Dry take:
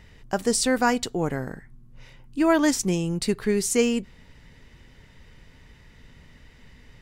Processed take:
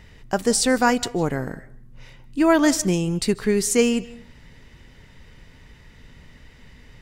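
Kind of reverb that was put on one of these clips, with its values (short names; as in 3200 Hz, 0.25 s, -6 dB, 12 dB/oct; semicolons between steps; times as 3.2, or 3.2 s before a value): digital reverb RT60 0.42 s, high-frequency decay 0.6×, pre-delay 0.115 s, DRR 19 dB; gain +3 dB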